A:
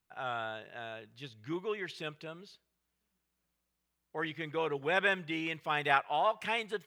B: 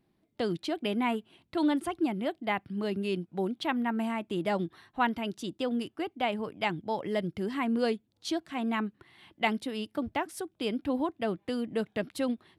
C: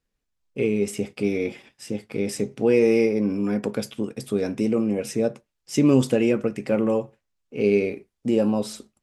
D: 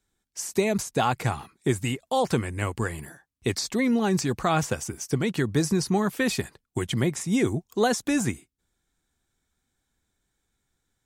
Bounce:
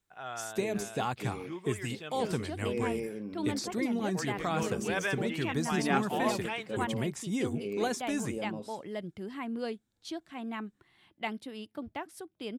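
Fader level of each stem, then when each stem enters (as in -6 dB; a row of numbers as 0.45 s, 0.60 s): -3.5 dB, -7.5 dB, -17.0 dB, -9.0 dB; 0.00 s, 1.80 s, 0.00 s, 0.00 s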